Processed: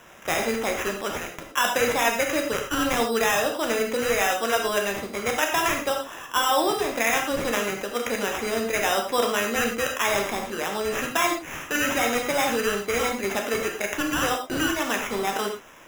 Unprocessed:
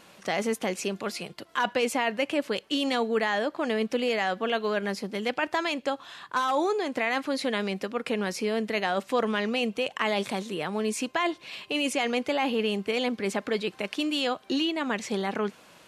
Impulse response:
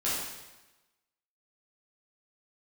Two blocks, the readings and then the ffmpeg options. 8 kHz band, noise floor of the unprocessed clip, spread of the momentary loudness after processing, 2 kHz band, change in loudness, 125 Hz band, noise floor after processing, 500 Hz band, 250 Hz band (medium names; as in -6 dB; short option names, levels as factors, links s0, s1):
+11.5 dB, -55 dBFS, 6 LU, +5.5 dB, +4.0 dB, +1.5 dB, -41 dBFS, +3.0 dB, -0.5 dB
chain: -filter_complex "[0:a]highpass=f=520:p=1,acrusher=samples=10:mix=1:aa=0.000001,asplit=2[s0][s1];[1:a]atrim=start_sample=2205,afade=t=out:st=0.16:d=0.01,atrim=end_sample=7497,adelay=13[s2];[s1][s2]afir=irnorm=-1:irlink=0,volume=0.355[s3];[s0][s3]amix=inputs=2:normalize=0,volume=1.58"